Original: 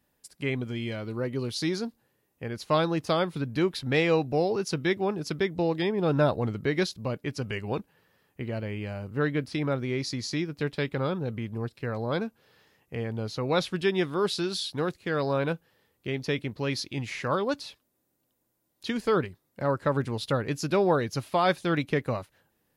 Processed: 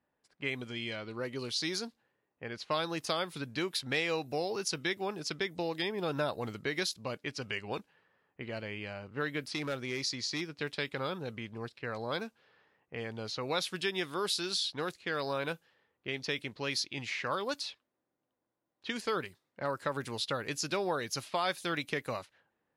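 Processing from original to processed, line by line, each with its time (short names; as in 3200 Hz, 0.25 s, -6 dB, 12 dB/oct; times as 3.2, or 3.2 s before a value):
9.43–10.41 overloaded stage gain 22 dB
whole clip: low-pass opened by the level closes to 1300 Hz, open at -24 dBFS; tilt +3 dB/oct; compressor 2:1, threshold -29 dBFS; gain -2.5 dB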